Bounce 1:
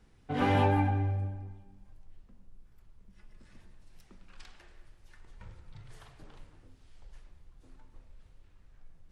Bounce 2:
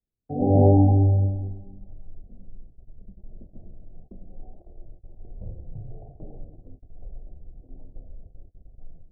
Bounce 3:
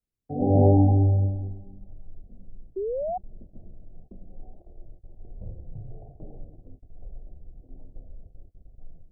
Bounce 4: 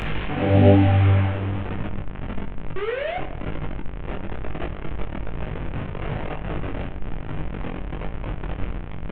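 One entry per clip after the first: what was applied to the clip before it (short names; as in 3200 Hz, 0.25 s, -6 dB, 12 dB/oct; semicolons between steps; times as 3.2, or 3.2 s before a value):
steep low-pass 750 Hz 96 dB/oct; gate -54 dBFS, range -28 dB; AGC gain up to 12.5 dB
painted sound rise, 2.76–3.18, 370–760 Hz -27 dBFS; gain -1.5 dB
delta modulation 16 kbps, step -24 dBFS; shoebox room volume 480 m³, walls mixed, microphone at 0.45 m; chorus 1.1 Hz, delay 19 ms, depth 3 ms; gain +6 dB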